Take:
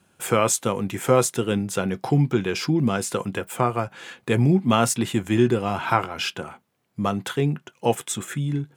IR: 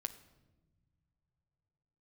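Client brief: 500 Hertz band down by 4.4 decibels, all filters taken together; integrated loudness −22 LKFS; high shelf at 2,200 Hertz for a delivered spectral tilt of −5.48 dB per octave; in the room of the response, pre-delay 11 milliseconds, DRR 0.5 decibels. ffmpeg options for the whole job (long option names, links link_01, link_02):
-filter_complex "[0:a]equalizer=frequency=500:width_type=o:gain=-5.5,highshelf=frequency=2200:gain=-4.5,asplit=2[link_01][link_02];[1:a]atrim=start_sample=2205,adelay=11[link_03];[link_02][link_03]afir=irnorm=-1:irlink=0,volume=1dB[link_04];[link_01][link_04]amix=inputs=2:normalize=0,volume=1dB"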